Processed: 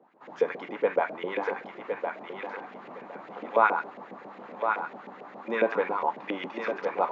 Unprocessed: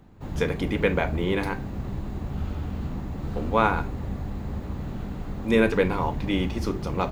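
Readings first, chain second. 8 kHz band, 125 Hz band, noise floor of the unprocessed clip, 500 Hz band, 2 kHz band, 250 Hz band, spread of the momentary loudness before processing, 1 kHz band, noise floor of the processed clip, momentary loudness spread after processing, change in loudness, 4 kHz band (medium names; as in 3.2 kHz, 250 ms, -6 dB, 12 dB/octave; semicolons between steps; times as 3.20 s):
no reading, under -25 dB, -35 dBFS, -1.5 dB, -2.0 dB, -12.5 dB, 11 LU, +1.5 dB, -48 dBFS, 19 LU, -2.5 dB, -9.5 dB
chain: LFO band-pass saw up 7.3 Hz 450–2400 Hz; high-pass 190 Hz 24 dB/octave; thinning echo 1061 ms, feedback 26%, level -5 dB; resampled via 16 kHz; peaking EQ 970 Hz +2 dB; trim +4 dB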